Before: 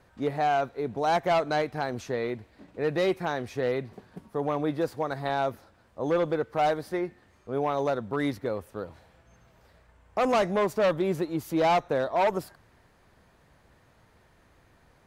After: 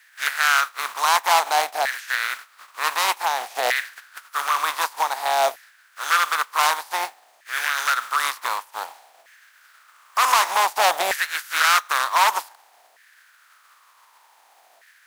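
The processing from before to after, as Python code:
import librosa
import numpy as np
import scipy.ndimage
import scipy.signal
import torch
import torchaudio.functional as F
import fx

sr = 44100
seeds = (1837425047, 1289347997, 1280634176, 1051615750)

y = fx.spec_flatten(x, sr, power=0.39)
y = fx.filter_lfo_highpass(y, sr, shape='saw_down', hz=0.54, low_hz=680.0, high_hz=1800.0, q=5.3)
y = y * librosa.db_to_amplitude(1.5)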